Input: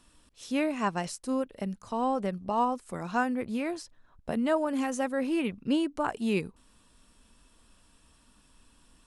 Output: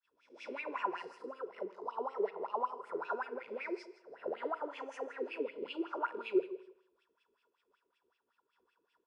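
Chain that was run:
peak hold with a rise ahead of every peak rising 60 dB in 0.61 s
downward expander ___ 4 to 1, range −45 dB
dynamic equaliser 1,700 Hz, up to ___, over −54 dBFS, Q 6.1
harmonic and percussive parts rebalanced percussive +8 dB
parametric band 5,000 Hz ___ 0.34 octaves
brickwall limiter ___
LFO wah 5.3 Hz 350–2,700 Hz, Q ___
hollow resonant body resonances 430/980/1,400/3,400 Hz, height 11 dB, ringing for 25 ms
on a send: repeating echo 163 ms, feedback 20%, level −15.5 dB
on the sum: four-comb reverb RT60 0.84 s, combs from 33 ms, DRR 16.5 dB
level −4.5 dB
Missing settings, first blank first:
−53 dBFS, −4 dB, +11.5 dB, −15 dBFS, 8.6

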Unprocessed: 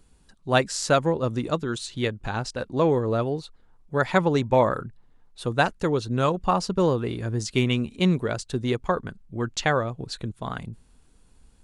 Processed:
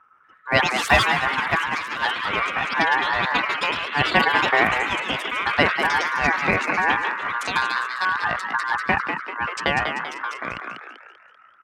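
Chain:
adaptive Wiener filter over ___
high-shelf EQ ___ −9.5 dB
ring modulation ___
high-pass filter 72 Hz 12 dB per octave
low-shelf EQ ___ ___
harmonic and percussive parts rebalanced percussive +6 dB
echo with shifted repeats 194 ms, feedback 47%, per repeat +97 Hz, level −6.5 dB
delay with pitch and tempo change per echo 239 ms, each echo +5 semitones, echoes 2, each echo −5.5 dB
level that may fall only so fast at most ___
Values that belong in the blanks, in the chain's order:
15 samples, 3,100 Hz, 1,300 Hz, 150 Hz, +5.5 dB, 82 dB per second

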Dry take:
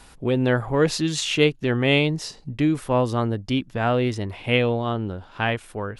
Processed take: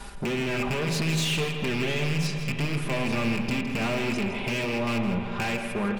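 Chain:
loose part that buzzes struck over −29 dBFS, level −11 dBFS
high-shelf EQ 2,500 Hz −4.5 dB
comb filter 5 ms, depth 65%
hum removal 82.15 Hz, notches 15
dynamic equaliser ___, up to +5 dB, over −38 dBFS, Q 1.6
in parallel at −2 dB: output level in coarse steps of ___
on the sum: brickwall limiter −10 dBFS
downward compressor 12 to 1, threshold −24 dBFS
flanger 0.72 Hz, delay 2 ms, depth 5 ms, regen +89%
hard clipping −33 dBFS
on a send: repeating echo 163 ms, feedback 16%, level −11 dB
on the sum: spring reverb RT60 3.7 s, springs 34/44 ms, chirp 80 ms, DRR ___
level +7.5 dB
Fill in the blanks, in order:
170 Hz, 16 dB, 5.5 dB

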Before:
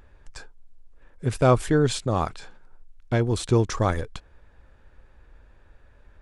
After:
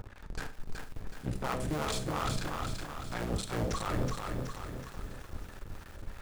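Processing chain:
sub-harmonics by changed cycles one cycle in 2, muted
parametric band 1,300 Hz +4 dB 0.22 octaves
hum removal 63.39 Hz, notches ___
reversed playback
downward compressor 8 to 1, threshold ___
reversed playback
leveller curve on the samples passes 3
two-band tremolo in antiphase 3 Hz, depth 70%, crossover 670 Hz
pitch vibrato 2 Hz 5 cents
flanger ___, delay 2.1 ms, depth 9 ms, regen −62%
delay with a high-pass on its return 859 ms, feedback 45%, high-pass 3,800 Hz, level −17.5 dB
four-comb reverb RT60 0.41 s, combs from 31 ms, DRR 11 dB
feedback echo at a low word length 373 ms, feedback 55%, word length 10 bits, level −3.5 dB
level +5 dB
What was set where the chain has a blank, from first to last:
11, −36 dBFS, 0.57 Hz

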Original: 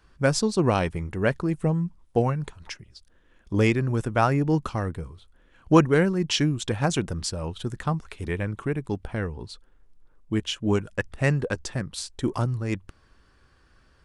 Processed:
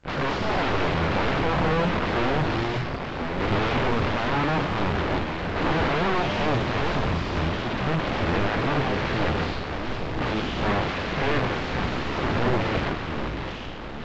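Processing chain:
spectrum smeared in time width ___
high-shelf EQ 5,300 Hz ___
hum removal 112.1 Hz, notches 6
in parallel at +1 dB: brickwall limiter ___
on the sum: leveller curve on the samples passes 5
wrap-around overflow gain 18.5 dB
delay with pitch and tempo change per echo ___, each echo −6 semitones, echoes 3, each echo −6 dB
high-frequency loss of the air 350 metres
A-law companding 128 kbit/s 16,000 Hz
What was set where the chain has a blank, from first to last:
175 ms, +3.5 dB, −18.5 dBFS, 144 ms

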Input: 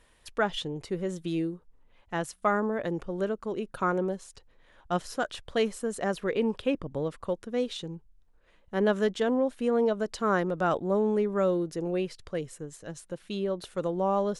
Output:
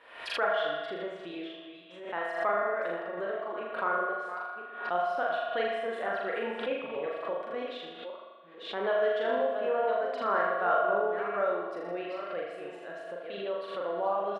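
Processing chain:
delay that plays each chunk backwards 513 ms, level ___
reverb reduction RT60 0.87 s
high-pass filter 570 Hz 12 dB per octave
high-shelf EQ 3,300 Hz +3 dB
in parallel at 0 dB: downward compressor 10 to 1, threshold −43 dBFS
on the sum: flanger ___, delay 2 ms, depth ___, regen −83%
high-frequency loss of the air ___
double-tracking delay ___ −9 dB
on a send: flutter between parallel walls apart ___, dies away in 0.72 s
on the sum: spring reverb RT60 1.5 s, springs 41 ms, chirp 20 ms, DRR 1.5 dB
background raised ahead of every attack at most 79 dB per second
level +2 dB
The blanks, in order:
−10 dB, 1.2 Hz, 9.5 ms, 440 metres, 44 ms, 6.8 metres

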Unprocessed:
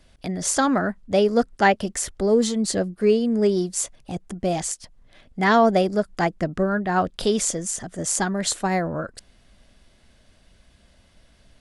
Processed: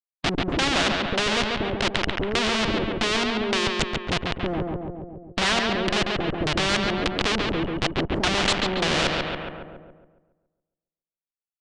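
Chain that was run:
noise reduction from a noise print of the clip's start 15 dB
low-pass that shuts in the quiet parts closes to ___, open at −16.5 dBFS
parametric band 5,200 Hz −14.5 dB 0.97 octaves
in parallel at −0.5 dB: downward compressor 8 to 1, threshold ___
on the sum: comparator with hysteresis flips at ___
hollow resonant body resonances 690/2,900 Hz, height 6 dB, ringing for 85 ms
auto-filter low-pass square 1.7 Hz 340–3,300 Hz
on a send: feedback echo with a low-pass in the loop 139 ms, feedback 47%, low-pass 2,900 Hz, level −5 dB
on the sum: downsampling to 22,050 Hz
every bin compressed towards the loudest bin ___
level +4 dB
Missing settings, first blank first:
660 Hz, −30 dBFS, −32 dBFS, 2 to 1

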